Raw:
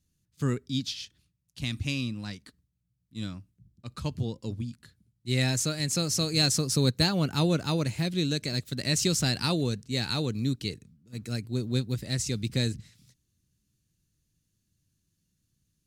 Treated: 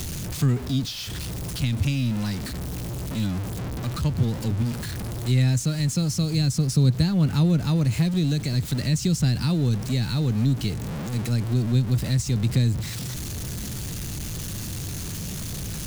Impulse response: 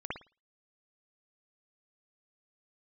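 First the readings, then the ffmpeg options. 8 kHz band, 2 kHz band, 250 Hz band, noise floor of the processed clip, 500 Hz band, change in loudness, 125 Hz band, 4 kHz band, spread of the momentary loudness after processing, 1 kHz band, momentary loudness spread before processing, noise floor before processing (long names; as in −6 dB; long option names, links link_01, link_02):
+0.5 dB, −0.5 dB, +6.0 dB, −32 dBFS, −0.5 dB, +4.0 dB, +9.0 dB, −2.0 dB, 11 LU, +0.5 dB, 15 LU, −78 dBFS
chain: -filter_complex "[0:a]aeval=exprs='val(0)+0.5*0.0266*sgn(val(0))':channel_layout=same,acrossover=split=220[link_01][link_02];[link_02]acompressor=threshold=-40dB:ratio=4[link_03];[link_01][link_03]amix=inputs=2:normalize=0,volume=7.5dB"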